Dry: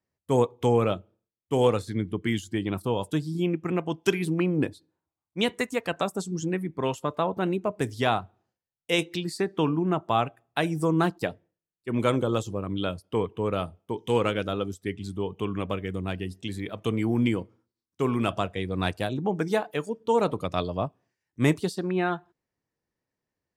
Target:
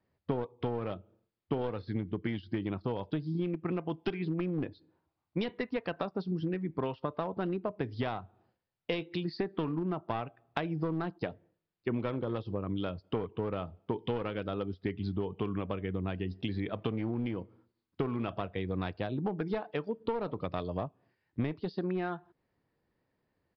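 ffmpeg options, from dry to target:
ffmpeg -i in.wav -af "aresample=11025,aeval=exprs='clip(val(0),-1,0.0631)':channel_layout=same,aresample=44100,acompressor=threshold=-38dB:ratio=12,highshelf=frequency=2900:gain=-9,volume=8.5dB" out.wav

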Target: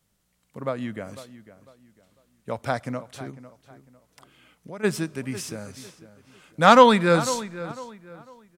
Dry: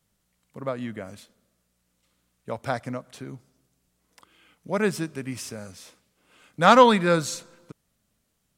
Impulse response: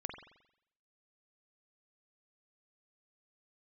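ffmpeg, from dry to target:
-filter_complex "[0:a]asplit=3[link_01][link_02][link_03];[link_01]afade=type=out:start_time=3.3:duration=0.02[link_04];[link_02]acompressor=threshold=-44dB:ratio=2.5,afade=type=in:start_time=3.3:duration=0.02,afade=type=out:start_time=4.83:duration=0.02[link_05];[link_03]afade=type=in:start_time=4.83:duration=0.02[link_06];[link_04][link_05][link_06]amix=inputs=3:normalize=0,asplit=2[link_07][link_08];[link_08]adelay=500,lowpass=frequency=3300:poles=1,volume=-15dB,asplit=2[link_09][link_10];[link_10]adelay=500,lowpass=frequency=3300:poles=1,volume=0.31,asplit=2[link_11][link_12];[link_12]adelay=500,lowpass=frequency=3300:poles=1,volume=0.31[link_13];[link_07][link_09][link_11][link_13]amix=inputs=4:normalize=0,volume=1.5dB"

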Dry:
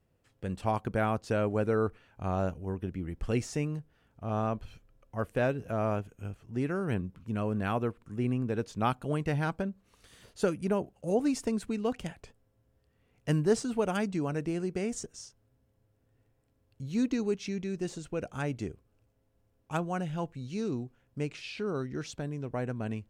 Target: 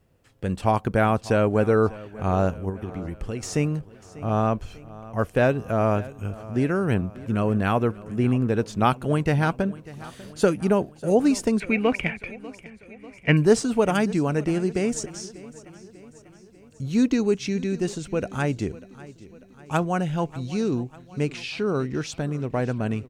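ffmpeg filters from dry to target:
ffmpeg -i in.wav -filter_complex "[0:a]asettb=1/sr,asplit=3[link_01][link_02][link_03];[link_01]atrim=end=2.694[link_04];[link_02]atrim=start=2.69:end=3.43,asetpts=PTS-STARTPTS,afade=type=in:duration=0.004:curve=qsin,afade=type=out:start_time=0.736:duration=0.004:curve=qsin,acompressor=threshold=-36dB:ratio=10[link_05];[link_03]atrim=start=3.426[link_06];[link_04][link_05]acrossfade=duration=0.004:curve1=hsin:curve2=qsin[link_07];[link_07][link_06]acrossfade=duration=0.004:curve1=qsin:curve2=hsin,asettb=1/sr,asplit=3[link_08][link_09][link_10];[link_08]atrim=end=11.604[link_11];[link_09]atrim=start=11.6:end=13.37,asetpts=PTS-STARTPTS,afade=type=in:duration=0.004:curve=qsin,afade=type=out:start_time=1.766:duration=0.004:curve=qsin,lowpass=frequency=2300:width_type=q:width=12[link_12];[link_10]atrim=start=13.366[link_13];[link_11][link_12]acrossfade=duration=0.004:curve1=hsin:curve2=qsin[link_14];[link_14][link_13]acrossfade=duration=0.004:curve1=qsin:curve2=hsin,aecho=1:1:594|1188|1782|2376|2970:0.112|0.0617|0.0339|0.0187|0.0103,volume=8.5dB" out.wav

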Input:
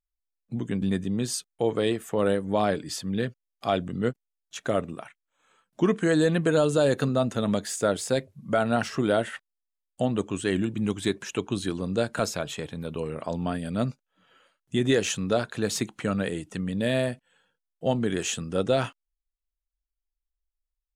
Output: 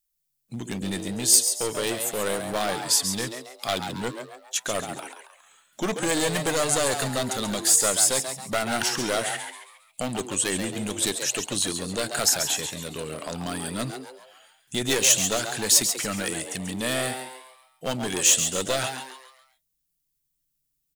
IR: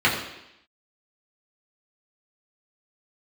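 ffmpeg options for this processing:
-filter_complex "[0:a]aeval=exprs='clip(val(0),-1,0.0596)':channel_layout=same,asplit=6[link_01][link_02][link_03][link_04][link_05][link_06];[link_02]adelay=137,afreqshift=130,volume=-8dB[link_07];[link_03]adelay=274,afreqshift=260,volume=-16dB[link_08];[link_04]adelay=411,afreqshift=390,volume=-23.9dB[link_09];[link_05]adelay=548,afreqshift=520,volume=-31.9dB[link_10];[link_06]adelay=685,afreqshift=650,volume=-39.8dB[link_11];[link_01][link_07][link_08][link_09][link_10][link_11]amix=inputs=6:normalize=0,crystalizer=i=8:c=0,volume=-3.5dB"

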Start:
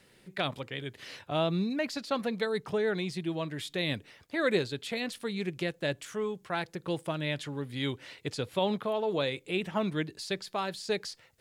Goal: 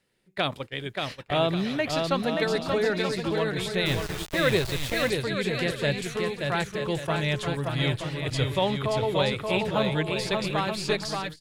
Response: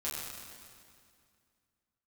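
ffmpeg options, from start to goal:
-filter_complex "[0:a]aecho=1:1:580|928|1137|1262|1337:0.631|0.398|0.251|0.158|0.1,agate=range=-17dB:threshold=-39dB:ratio=16:detection=peak,asplit=3[link_01][link_02][link_03];[link_01]afade=type=out:start_time=3.85:duration=0.02[link_04];[link_02]aeval=exprs='val(0)*gte(abs(val(0)),0.0168)':channel_layout=same,afade=type=in:start_time=3.85:duration=0.02,afade=type=out:start_time=5.09:duration=0.02[link_05];[link_03]afade=type=in:start_time=5.09:duration=0.02[link_06];[link_04][link_05][link_06]amix=inputs=3:normalize=0,asubboost=boost=10.5:cutoff=72,volume=5dB"

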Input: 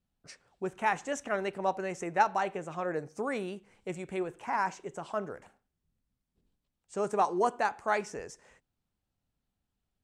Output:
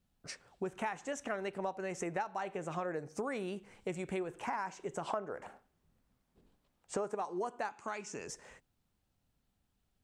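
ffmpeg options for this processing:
ffmpeg -i in.wav -filter_complex "[0:a]asettb=1/sr,asplit=3[link_01][link_02][link_03];[link_01]atrim=end=5.074[link_04];[link_02]atrim=start=5.07:end=7.15,asetpts=PTS-STARTPTS,afade=type=in:duration=0.004:curve=qsin,afade=type=out:start_time=2.076:duration=0.004:curve=qsin,equalizer=frequency=770:width=0.37:gain=9[link_05];[link_03]atrim=start=7.146[link_06];[link_04][link_05]acrossfade=duration=0.004:curve1=hsin:curve2=qsin[link_07];[link_07][link_06]acrossfade=duration=0.004:curve1=qsin:curve2=hsin,acompressor=threshold=-39dB:ratio=8,asettb=1/sr,asplit=3[link_08][link_09][link_10];[link_08]atrim=end=7.704[link_11];[link_09]atrim=start=7.7:end=8.28,asetpts=PTS-STARTPTS,afade=type=in:duration=0.004:curve=qsin,afade=type=out:start_time=0.576:duration=0.004:curve=qsin,highpass=130,equalizer=frequency=500:width_type=q:width=4:gain=-9,equalizer=frequency=730:width_type=q:width=4:gain=-7,equalizer=frequency=1800:width_type=q:width=4:gain=-5,equalizer=frequency=2600:width_type=q:width=4:gain=5,equalizer=frequency=6800:width_type=q:width=4:gain=6,lowpass=frequency=9500:width=0.5412,lowpass=frequency=9500:width=1.3066[link_12];[link_10]atrim=start=8.276[link_13];[link_11][link_12]acrossfade=duration=0.004:curve1=hsin:curve2=qsin[link_14];[link_14][link_13]acrossfade=duration=0.004:curve1=qsin:curve2=hsin,volume=4.5dB" out.wav

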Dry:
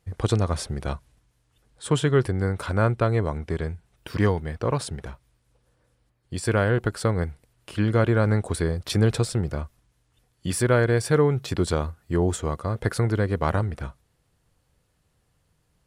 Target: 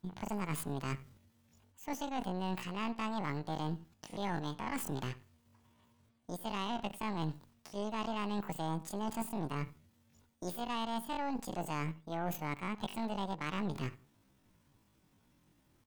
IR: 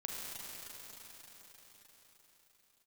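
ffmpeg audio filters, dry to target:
-filter_complex "[0:a]areverse,acompressor=threshold=-34dB:ratio=10,areverse,aeval=exprs='0.075*(cos(1*acos(clip(val(0)/0.075,-1,1)))-cos(1*PI/2))+0.00841*(cos(2*acos(clip(val(0)/0.075,-1,1)))-cos(2*PI/2))+0.00596*(cos(3*acos(clip(val(0)/0.075,-1,1)))-cos(3*PI/2))+0.00119*(cos(5*acos(clip(val(0)/0.075,-1,1)))-cos(5*PI/2))+0.00531*(cos(6*acos(clip(val(0)/0.075,-1,1)))-cos(6*PI/2))':channel_layout=same,asplit=2[link_01][link_02];[link_02]adelay=85,lowpass=frequency=1300:poles=1,volume=-17dB,asplit=2[link_03][link_04];[link_04]adelay=85,lowpass=frequency=1300:poles=1,volume=0.21[link_05];[link_01][link_03][link_05]amix=inputs=3:normalize=0,asetrate=85689,aresample=44100,atempo=0.514651"

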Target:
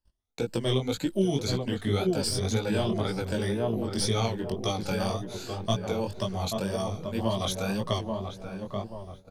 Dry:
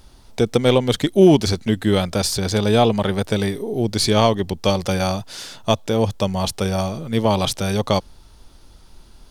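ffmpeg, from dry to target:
ffmpeg -i in.wav -filter_complex "[0:a]afftfilt=real='re*pow(10,12/40*sin(2*PI*(1.3*log(max(b,1)*sr/1024/100)/log(2)-(1.8)*(pts-256)/sr)))':imag='im*pow(10,12/40*sin(2*PI*(1.3*log(max(b,1)*sr/1024/100)/log(2)-(1.8)*(pts-256)/sr)))':win_size=1024:overlap=0.75,asplit=2[link_01][link_02];[link_02]adelay=833,lowpass=frequency=1400:poles=1,volume=-6dB,asplit=2[link_03][link_04];[link_04]adelay=833,lowpass=frequency=1400:poles=1,volume=0.44,asplit=2[link_05][link_06];[link_06]adelay=833,lowpass=frequency=1400:poles=1,volume=0.44,asplit=2[link_07][link_08];[link_08]adelay=833,lowpass=frequency=1400:poles=1,volume=0.44,asplit=2[link_09][link_10];[link_10]adelay=833,lowpass=frequency=1400:poles=1,volume=0.44[link_11];[link_03][link_05][link_07][link_09][link_11]amix=inputs=5:normalize=0[link_12];[link_01][link_12]amix=inputs=2:normalize=0,agate=range=-30dB:threshold=-36dB:ratio=16:detection=peak,acrossover=split=200|3000[link_13][link_14][link_15];[link_14]acompressor=threshold=-15dB:ratio=8[link_16];[link_13][link_16][link_15]amix=inputs=3:normalize=0,flanger=delay=16.5:depth=6.4:speed=1.9,volume=-7.5dB" out.wav

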